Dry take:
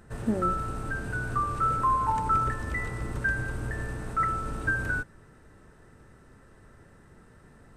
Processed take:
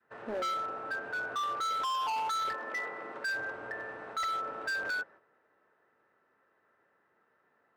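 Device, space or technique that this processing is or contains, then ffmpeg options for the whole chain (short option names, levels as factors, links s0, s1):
walkie-talkie: -filter_complex "[0:a]lowpass=7000,equalizer=f=230:t=o:w=2.9:g=-4.5,adynamicequalizer=threshold=0.00447:dfrequency=580:dqfactor=1.2:tfrequency=580:tqfactor=1.2:attack=5:release=100:ratio=0.375:range=3.5:mode=boostabove:tftype=bell,highpass=450,lowpass=2300,asoftclip=type=hard:threshold=0.0282,agate=range=0.355:threshold=0.002:ratio=16:detection=peak,asettb=1/sr,asplit=3[s0][s1][s2];[s0]atrim=end=2.544[s3];[s1]atrim=start=2.54:end=3.3,asetpts=PTS-STARTPTS,afade=t=in:d=0.004:c=qsin,afade=t=out:st=0.756:d=0.004:c=qsin,highpass=f=160:w=0.5412,highpass=f=160:w=1.3066[s4];[s2]atrim=start=3.296[s5];[s3][s4]acrossfade=d=0.004:c1=hsin:c2=qsin[s6];[s6][s5]acrossfade=d=0.004:c1=qsin:c2=hsin"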